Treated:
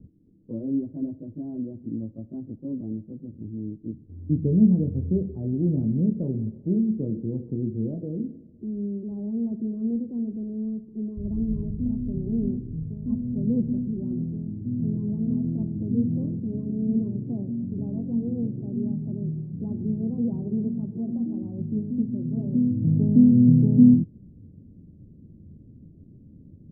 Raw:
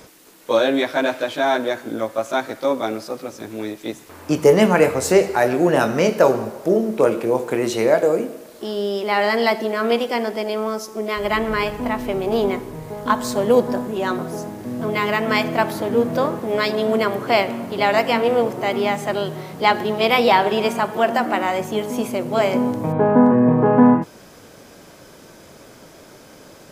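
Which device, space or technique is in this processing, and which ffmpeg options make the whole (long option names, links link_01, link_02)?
the neighbour's flat through the wall: -af "lowpass=frequency=230:width=0.5412,lowpass=frequency=230:width=1.3066,equalizer=frequency=87:width_type=o:width=0.55:gain=7,volume=3dB"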